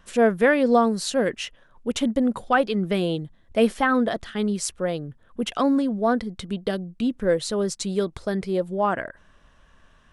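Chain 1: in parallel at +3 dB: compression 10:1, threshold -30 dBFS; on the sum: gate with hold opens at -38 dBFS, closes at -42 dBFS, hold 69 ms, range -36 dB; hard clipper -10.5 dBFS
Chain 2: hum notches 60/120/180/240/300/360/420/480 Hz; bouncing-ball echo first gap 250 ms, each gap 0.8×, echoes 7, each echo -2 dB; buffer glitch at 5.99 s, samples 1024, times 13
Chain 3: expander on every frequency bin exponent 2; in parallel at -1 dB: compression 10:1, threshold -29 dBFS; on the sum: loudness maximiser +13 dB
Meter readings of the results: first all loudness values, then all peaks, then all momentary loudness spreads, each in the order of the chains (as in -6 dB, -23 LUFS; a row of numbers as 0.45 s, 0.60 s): -21.5 LUFS, -20.5 LUFS, -13.0 LUFS; -10.5 dBFS, -3.5 dBFS, -1.0 dBFS; 9 LU, 7 LU, 10 LU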